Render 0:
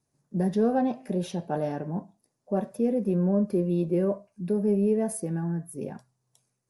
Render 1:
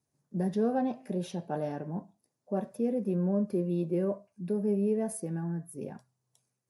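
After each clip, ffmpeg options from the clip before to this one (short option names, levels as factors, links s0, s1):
-af "highpass=42,volume=0.596"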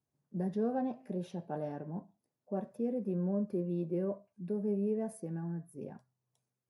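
-af "highshelf=f=2800:g=-9,volume=0.596"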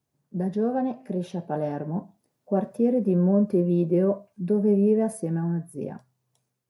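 -af "dynaudnorm=f=650:g=5:m=1.78,volume=2.37"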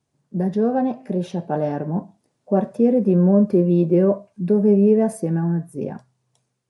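-af "aresample=22050,aresample=44100,volume=1.88"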